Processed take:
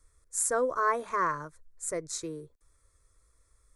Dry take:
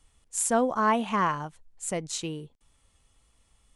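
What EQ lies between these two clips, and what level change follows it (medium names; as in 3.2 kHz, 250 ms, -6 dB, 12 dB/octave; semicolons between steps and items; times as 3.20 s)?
static phaser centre 790 Hz, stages 6; 0.0 dB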